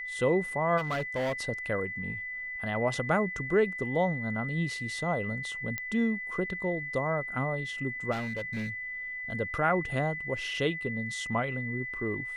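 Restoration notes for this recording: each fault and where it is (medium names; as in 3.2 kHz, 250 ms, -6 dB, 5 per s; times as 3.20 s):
whine 2 kHz -35 dBFS
0.77–1.33 s: clipped -27 dBFS
5.78 s: pop -18 dBFS
8.11–8.70 s: clipped -30 dBFS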